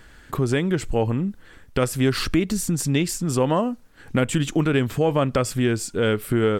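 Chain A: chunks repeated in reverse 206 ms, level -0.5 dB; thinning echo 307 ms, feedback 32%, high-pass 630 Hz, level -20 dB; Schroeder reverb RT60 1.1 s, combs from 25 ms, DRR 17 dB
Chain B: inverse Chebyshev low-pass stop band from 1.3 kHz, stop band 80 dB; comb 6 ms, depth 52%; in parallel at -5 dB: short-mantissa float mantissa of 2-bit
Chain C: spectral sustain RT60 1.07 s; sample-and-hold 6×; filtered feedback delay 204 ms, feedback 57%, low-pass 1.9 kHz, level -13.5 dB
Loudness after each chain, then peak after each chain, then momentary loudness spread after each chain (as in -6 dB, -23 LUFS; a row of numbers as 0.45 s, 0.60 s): -20.0 LUFS, -22.5 LUFS, -20.0 LUFS; -3.5 dBFS, -7.5 dBFS, -5.0 dBFS; 5 LU, 8 LU, 6 LU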